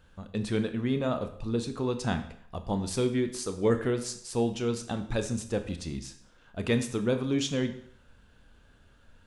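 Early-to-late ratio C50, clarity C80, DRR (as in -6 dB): 11.5 dB, 14.0 dB, 8.0 dB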